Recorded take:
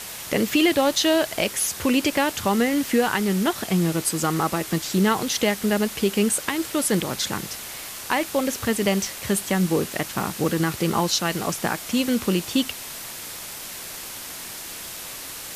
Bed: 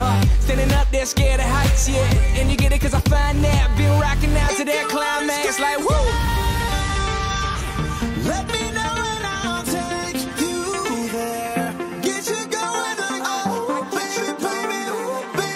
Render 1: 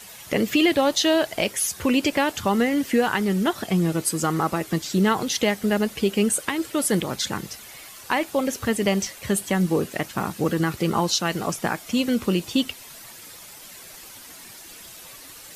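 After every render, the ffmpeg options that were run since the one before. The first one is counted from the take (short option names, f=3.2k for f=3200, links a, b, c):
-af "afftdn=nr=10:nf=-36"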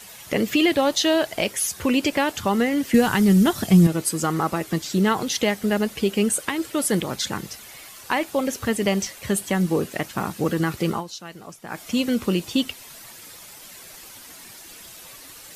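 -filter_complex "[0:a]asettb=1/sr,asplit=3[a][b][c];[a]atrim=end=2.944[d];[b]atrim=start=2.94:end=3.87,asetpts=PTS-STARTPTS,afade=t=in:d=0.004:c=qsin,afade=t=out:st=0.926:d=0.004:c=qsin,bass=f=250:g=11,treble=f=4k:g=7[e];[c]atrim=start=3.866[f];[d][e]acrossfade=d=0.004:c1=hsin:c2=qsin[g];[g][f]acrossfade=d=0.004:c1=qsin:c2=hsin,asplit=3[h][i][j];[h]atrim=end=11.04,asetpts=PTS-STARTPTS,afade=t=out:st=10.9:d=0.14:silence=0.199526[k];[i]atrim=start=11.04:end=11.67,asetpts=PTS-STARTPTS,volume=-14dB[l];[j]atrim=start=11.67,asetpts=PTS-STARTPTS,afade=t=in:d=0.14:silence=0.199526[m];[k][l][m]concat=n=3:v=0:a=1"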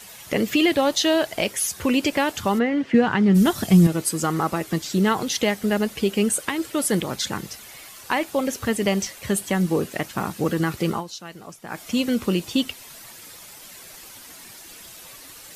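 -filter_complex "[0:a]asplit=3[a][b][c];[a]afade=t=out:st=2.58:d=0.02[d];[b]highpass=110,lowpass=2.7k,afade=t=in:st=2.58:d=0.02,afade=t=out:st=3.34:d=0.02[e];[c]afade=t=in:st=3.34:d=0.02[f];[d][e][f]amix=inputs=3:normalize=0"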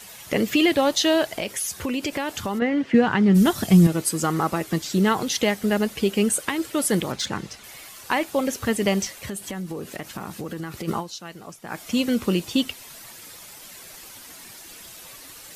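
-filter_complex "[0:a]asettb=1/sr,asplit=3[a][b][c];[a]atrim=end=1.364[d];[b]atrim=start=1.36:end=2.62,asetpts=PTS-STARTPTS,afade=t=in:d=0.004:c=qsin,afade=t=out:st=1.256:d=0.004:c=qsin,acompressor=threshold=-24dB:ratio=3:attack=3.2:release=140:knee=1:detection=peak[e];[c]atrim=start=2.616[f];[d][e]acrossfade=d=0.004:c1=hsin:c2=qsin[g];[g][f]acrossfade=d=0.004:c1=qsin:c2=hsin,asettb=1/sr,asplit=3[h][i][j];[h]atrim=end=7.124[k];[i]atrim=start=7.12:end=7.64,asetpts=PTS-STARTPTS,afade=t=in:d=0.004:c=qsin,afade=t=out:st=0.516:d=0.004:c=qsin,adynamicsmooth=sensitivity=2:basefreq=7.3k[l];[j]atrim=start=7.636[m];[k][l]acrossfade=d=0.004:c1=hsin:c2=qsin[n];[n][m]acrossfade=d=0.004:c1=qsin:c2=hsin,asplit=3[o][p][q];[o]afade=t=out:st=9.24:d=0.02[r];[p]acompressor=threshold=-29dB:ratio=5:attack=3.2:release=140:knee=1:detection=peak,afade=t=in:st=9.24:d=0.02,afade=t=out:st=10.87:d=0.02[s];[q]afade=t=in:st=10.87:d=0.02[t];[r][s][t]amix=inputs=3:normalize=0"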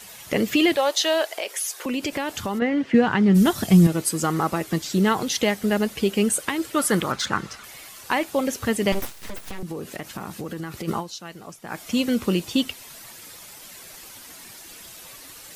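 -filter_complex "[0:a]asettb=1/sr,asplit=3[a][b][c];[a]atrim=end=0.764[d];[b]atrim=start=0.76:end=1.86,asetpts=PTS-STARTPTS,afade=t=in:d=0.004:c=qsin,afade=t=out:st=1.096:d=0.004:c=qsin,highpass=f=420:w=0.5412,highpass=f=420:w=1.3066[e];[c]atrim=start=1.856[f];[d][e]acrossfade=d=0.004:c1=hsin:c2=qsin[g];[g][f]acrossfade=d=0.004:c1=qsin:c2=hsin,asettb=1/sr,asplit=3[h][i][j];[h]atrim=end=6.764[k];[i]atrim=start=6.76:end=7.65,asetpts=PTS-STARTPTS,afade=t=in:d=0.004:c=qsin,afade=t=out:st=0.886:d=0.004:c=qsin,equalizer=f=1.3k:w=1.9:g=11[l];[j]atrim=start=7.646[m];[k][l]acrossfade=d=0.004:c1=hsin:c2=qsin[n];[n][m]acrossfade=d=0.004:c1=qsin:c2=hsin,asettb=1/sr,asplit=3[o][p][q];[o]atrim=end=8.924[r];[p]atrim=start=8.92:end=9.63,asetpts=PTS-STARTPTS,afade=t=in:d=0.004:c=qsin,afade=t=out:st=0.706:d=0.004:c=qsin,aeval=exprs='abs(val(0))':c=same[s];[q]atrim=start=9.626[t];[r][s]acrossfade=d=0.004:c1=hsin:c2=qsin[u];[u][t]acrossfade=d=0.004:c1=qsin:c2=hsin"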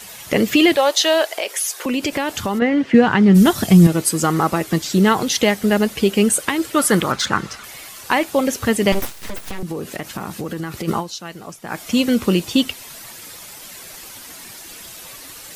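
-af "volume=5.5dB,alimiter=limit=-2dB:level=0:latency=1"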